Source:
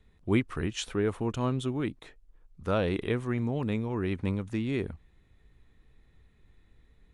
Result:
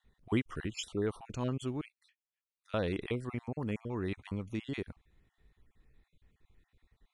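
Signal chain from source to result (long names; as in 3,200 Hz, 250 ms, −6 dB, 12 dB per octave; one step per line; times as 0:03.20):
time-frequency cells dropped at random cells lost 33%
0:01.81–0:02.74: four-pole ladder high-pass 2,000 Hz, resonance 35%
dynamic equaliser 5,200 Hz, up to +4 dB, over −55 dBFS, Q 0.95
level −5 dB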